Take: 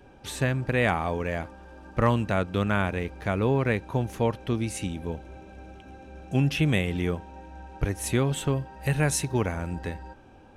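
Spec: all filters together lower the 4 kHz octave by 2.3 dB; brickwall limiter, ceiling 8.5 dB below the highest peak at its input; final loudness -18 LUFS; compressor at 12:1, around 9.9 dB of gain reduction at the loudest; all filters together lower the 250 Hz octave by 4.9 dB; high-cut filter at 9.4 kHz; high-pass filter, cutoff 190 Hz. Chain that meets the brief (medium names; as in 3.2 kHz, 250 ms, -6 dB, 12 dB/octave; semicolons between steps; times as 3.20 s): high-pass 190 Hz; low-pass 9.4 kHz; peaking EQ 250 Hz -4 dB; peaking EQ 4 kHz -3 dB; compression 12:1, threshold -29 dBFS; trim +20 dB; peak limiter -3.5 dBFS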